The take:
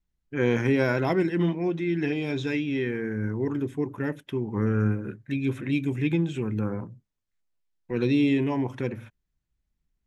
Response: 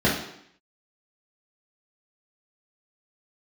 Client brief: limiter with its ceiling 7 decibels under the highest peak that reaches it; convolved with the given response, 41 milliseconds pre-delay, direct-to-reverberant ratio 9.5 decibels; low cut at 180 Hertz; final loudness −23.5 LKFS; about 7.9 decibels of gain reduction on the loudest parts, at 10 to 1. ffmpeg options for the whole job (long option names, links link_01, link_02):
-filter_complex "[0:a]highpass=180,acompressor=threshold=-27dB:ratio=10,alimiter=level_in=1dB:limit=-24dB:level=0:latency=1,volume=-1dB,asplit=2[link_01][link_02];[1:a]atrim=start_sample=2205,adelay=41[link_03];[link_02][link_03]afir=irnorm=-1:irlink=0,volume=-27dB[link_04];[link_01][link_04]amix=inputs=2:normalize=0,volume=9.5dB"